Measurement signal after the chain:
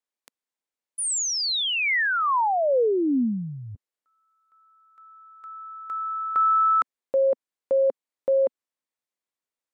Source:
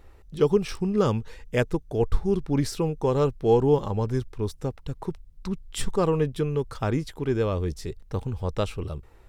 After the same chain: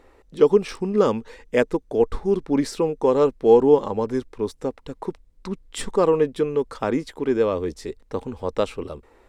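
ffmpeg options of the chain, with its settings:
-af "equalizer=f=125:t=o:w=1:g=-6,equalizer=f=250:t=o:w=1:g=11,equalizer=f=500:t=o:w=1:g=10,equalizer=f=1k:t=o:w=1:g=8,equalizer=f=2k:t=o:w=1:g=8,equalizer=f=4k:t=o:w=1:g=5,equalizer=f=8k:t=o:w=1:g=7,volume=-7dB"

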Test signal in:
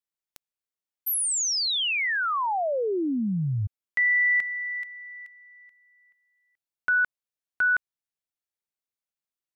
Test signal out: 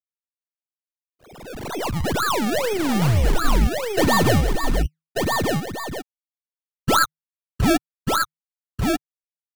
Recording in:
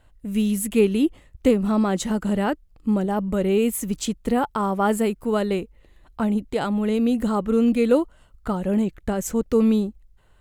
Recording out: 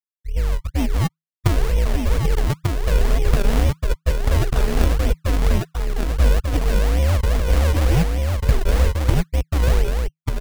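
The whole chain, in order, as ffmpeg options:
-af "bandreject=f=175.5:t=h:w=4,bandreject=f=351:t=h:w=4,bandreject=f=526.5:t=h:w=4,bandreject=f=702:t=h:w=4,bandreject=f=877.5:t=h:w=4,bandreject=f=1.053k:t=h:w=4,bandreject=f=1.2285k:t=h:w=4,bandreject=f=1.404k:t=h:w=4,bandreject=f=1.5795k:t=h:w=4,bandreject=f=1.755k:t=h:w=4,bandreject=f=1.9305k:t=h:w=4,bandreject=f=2.106k:t=h:w=4,bandreject=f=2.2815k:t=h:w=4,bandreject=f=2.457k:t=h:w=4,bandreject=f=2.6325k:t=h:w=4,bandreject=f=2.808k:t=h:w=4,bandreject=f=2.9835k:t=h:w=4,bandreject=f=3.159k:t=h:w=4,bandreject=f=3.3345k:t=h:w=4,bandreject=f=3.51k:t=h:w=4,bandreject=f=3.6855k:t=h:w=4,bandreject=f=3.861k:t=h:w=4,bandreject=f=4.0365k:t=h:w=4,bandreject=f=4.212k:t=h:w=4,bandreject=f=4.3875k:t=h:w=4,bandreject=f=4.563k:t=h:w=4,bandreject=f=4.7385k:t=h:w=4,afftfilt=real='re*gte(hypot(re,im),0.355)':imag='im*gte(hypot(re,im),0.355)':win_size=1024:overlap=0.75,asubboost=boost=11.5:cutoff=160,dynaudnorm=f=620:g=7:m=14dB,lowshelf=f=350:g=2.5,acompressor=threshold=-16dB:ratio=5:attack=0.89:release=69:knee=6:detection=rms,lowpass=3.1k,asoftclip=type=tanh:threshold=-20dB,afreqshift=-160,acrusher=samples=30:mix=1:aa=0.000001:lfo=1:lforange=30:lforate=2.1,aeval=exprs='0.168*(cos(1*acos(clip(val(0)/0.168,-1,1)))-cos(1*PI/2))+0.0266*(cos(3*acos(clip(val(0)/0.168,-1,1)))-cos(3*PI/2))+0.00841*(cos(6*acos(clip(val(0)/0.168,-1,1)))-cos(6*PI/2))':c=same,aecho=1:1:1192:0.668,volume=8dB"

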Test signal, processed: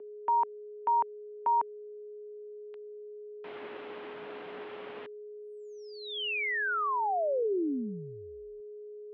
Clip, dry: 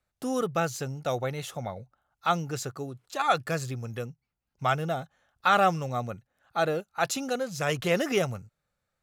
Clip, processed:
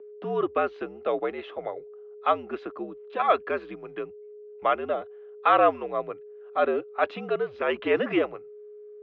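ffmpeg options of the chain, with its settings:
-af "highshelf=f=2.1k:g=-6.5,aeval=exprs='val(0)+0.00501*sin(2*PI*490*n/s)':c=same,highpass=f=340:t=q:w=0.5412,highpass=f=340:t=q:w=1.307,lowpass=f=3.3k:t=q:w=0.5176,lowpass=f=3.3k:t=q:w=0.7071,lowpass=f=3.3k:t=q:w=1.932,afreqshift=-71,volume=4dB"

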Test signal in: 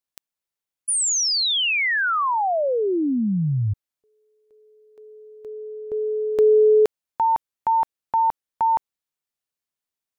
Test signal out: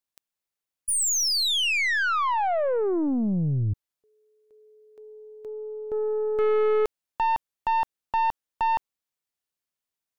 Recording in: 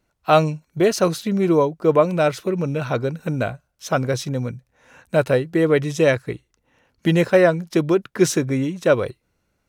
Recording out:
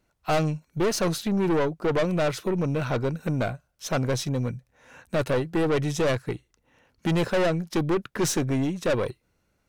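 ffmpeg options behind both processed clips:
-af "aeval=exprs='(tanh(10*val(0)+0.3)-tanh(0.3))/10':c=same"

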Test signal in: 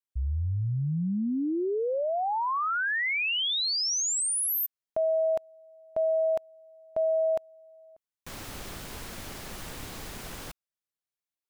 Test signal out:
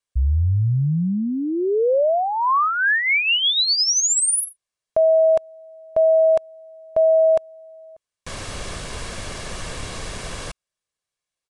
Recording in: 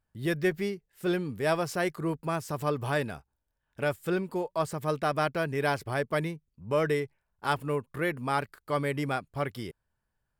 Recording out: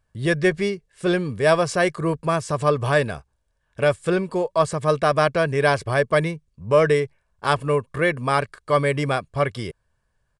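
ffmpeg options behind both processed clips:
-af "aecho=1:1:1.8:0.37,aresample=22050,aresample=44100,volume=8.5dB"

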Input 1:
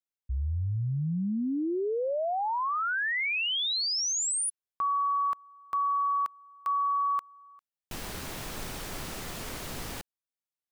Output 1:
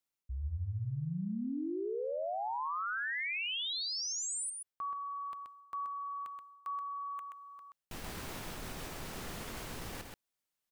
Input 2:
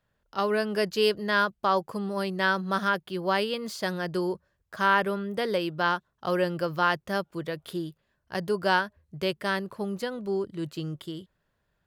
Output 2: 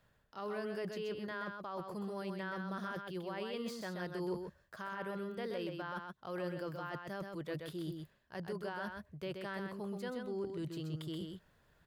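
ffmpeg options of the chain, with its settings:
-filter_complex "[0:a]acrossover=split=2900[a][b];[b]acompressor=threshold=-41dB:ratio=4:attack=1:release=60[c];[a][c]amix=inputs=2:normalize=0,alimiter=limit=-21dB:level=0:latency=1:release=24,areverse,acompressor=threshold=-41dB:ratio=10:attack=0.14:release=271:knee=1:detection=rms,areverse,aecho=1:1:128:0.562,volume=5dB"

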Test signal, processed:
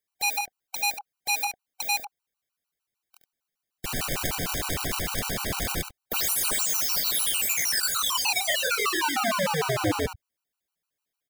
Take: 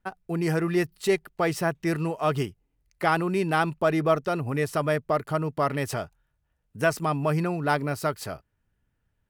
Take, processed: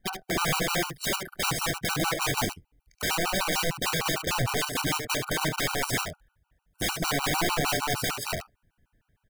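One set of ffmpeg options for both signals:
-filter_complex "[0:a]equalizer=f=7.3k:w=0.84:g=-2,acompressor=threshold=-25dB:ratio=8,asplit=2[a][b];[b]adelay=24,volume=-10.5dB[c];[a][c]amix=inputs=2:normalize=0,aeval=exprs='(mod(22.4*val(0)+1,2)-1)/22.4':c=same,aecho=1:1:71:0.447,afftfilt=real='re*gt(sin(2*PI*6.6*pts/sr)*(1-2*mod(floor(b*sr/1024/770),2)),0)':imag='im*gt(sin(2*PI*6.6*pts/sr)*(1-2*mod(floor(b*sr/1024/770),2)),0)':win_size=1024:overlap=0.75,volume=7.5dB"

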